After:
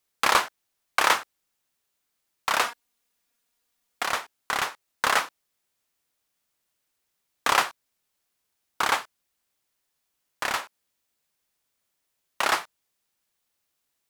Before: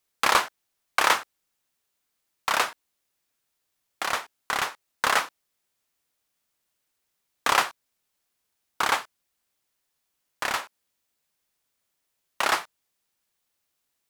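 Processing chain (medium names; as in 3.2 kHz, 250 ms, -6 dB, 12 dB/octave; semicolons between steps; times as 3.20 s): 2.64–4.03 s: comb 4.2 ms, depth 69%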